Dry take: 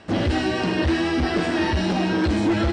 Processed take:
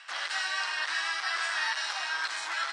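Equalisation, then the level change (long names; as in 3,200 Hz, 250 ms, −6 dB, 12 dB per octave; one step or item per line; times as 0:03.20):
high-pass filter 1,200 Hz 24 dB per octave
dynamic equaliser 2,700 Hz, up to −7 dB, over −46 dBFS, Q 1.6
+2.5 dB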